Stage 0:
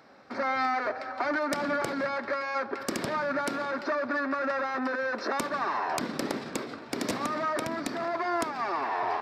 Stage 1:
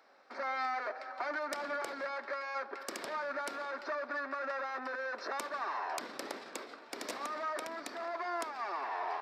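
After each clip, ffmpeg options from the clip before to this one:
-af "highpass=460,volume=0.447"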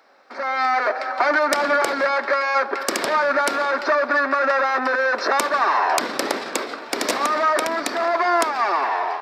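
-af "dynaudnorm=f=260:g=5:m=3.16,volume=2.66"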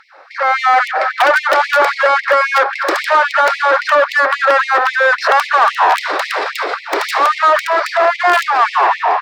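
-filter_complex "[0:a]aeval=exprs='(mod(2.99*val(0)+1,2)-1)/2.99':c=same,asplit=2[s0][s1];[s1]highpass=f=720:p=1,volume=5.62,asoftclip=type=tanh:threshold=0.335[s2];[s0][s2]amix=inputs=2:normalize=0,lowpass=f=1300:p=1,volume=0.501,afftfilt=real='re*gte(b*sr/1024,270*pow(2000/270,0.5+0.5*sin(2*PI*3.7*pts/sr)))':imag='im*gte(b*sr/1024,270*pow(2000/270,0.5+0.5*sin(2*PI*3.7*pts/sr)))':win_size=1024:overlap=0.75,volume=2.51"

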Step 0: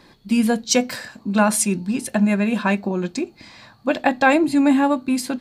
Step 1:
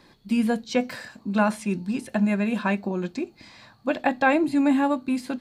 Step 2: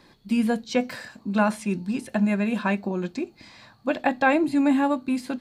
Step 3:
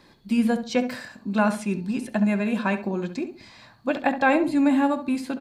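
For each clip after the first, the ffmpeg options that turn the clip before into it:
-filter_complex "[0:a]acrossover=split=3400[s0][s1];[s1]acompressor=threshold=0.0112:ratio=4:attack=1:release=60[s2];[s0][s2]amix=inputs=2:normalize=0,volume=0.596"
-af anull
-filter_complex "[0:a]asplit=2[s0][s1];[s1]adelay=68,lowpass=f=2000:p=1,volume=0.335,asplit=2[s2][s3];[s3]adelay=68,lowpass=f=2000:p=1,volume=0.29,asplit=2[s4][s5];[s5]adelay=68,lowpass=f=2000:p=1,volume=0.29[s6];[s0][s2][s4][s6]amix=inputs=4:normalize=0"

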